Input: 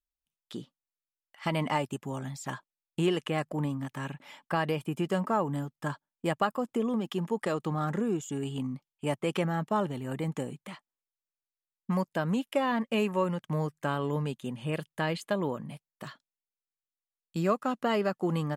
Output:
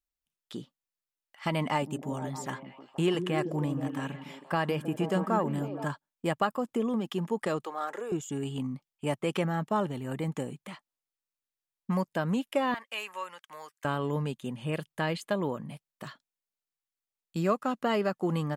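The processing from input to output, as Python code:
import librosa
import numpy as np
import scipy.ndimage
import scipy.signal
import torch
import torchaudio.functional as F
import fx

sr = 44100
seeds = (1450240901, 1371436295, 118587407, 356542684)

y = fx.echo_stepped(x, sr, ms=158, hz=230.0, octaves=0.7, feedback_pct=70, wet_db=-3.5, at=(1.66, 5.85))
y = fx.highpass(y, sr, hz=420.0, slope=24, at=(7.64, 8.12))
y = fx.highpass(y, sr, hz=1200.0, slope=12, at=(12.74, 13.85))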